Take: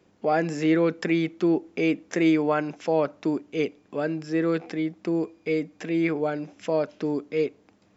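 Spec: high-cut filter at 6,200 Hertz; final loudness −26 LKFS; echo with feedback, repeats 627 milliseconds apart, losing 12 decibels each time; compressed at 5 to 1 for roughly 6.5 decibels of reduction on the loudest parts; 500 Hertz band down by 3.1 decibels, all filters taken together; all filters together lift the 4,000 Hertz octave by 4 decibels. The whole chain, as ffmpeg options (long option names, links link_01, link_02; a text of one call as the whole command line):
ffmpeg -i in.wav -af "lowpass=6200,equalizer=frequency=500:width_type=o:gain=-4,equalizer=frequency=4000:width_type=o:gain=6,acompressor=threshold=-25dB:ratio=5,aecho=1:1:627|1254|1881:0.251|0.0628|0.0157,volume=5dB" out.wav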